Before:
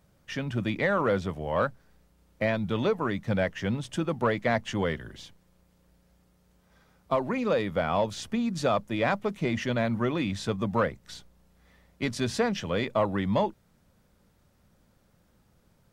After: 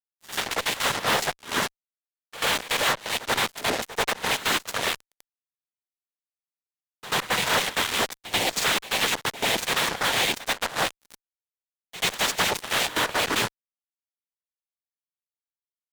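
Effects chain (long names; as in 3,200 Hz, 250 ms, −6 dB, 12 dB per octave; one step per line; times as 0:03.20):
notch filter 3,600 Hz, Q 24
gate on every frequency bin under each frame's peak −20 dB weak
parametric band 590 Hz +5.5 dB 0.28 octaves
in parallel at +3 dB: fake sidechain pumping 87 BPM, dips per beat 1, −12 dB, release 71 ms
on the sum: cochlear-implant simulation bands 6
fuzz pedal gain 41 dB, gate −38 dBFS
echo ahead of the sound 88 ms −15.5 dB
level −5 dB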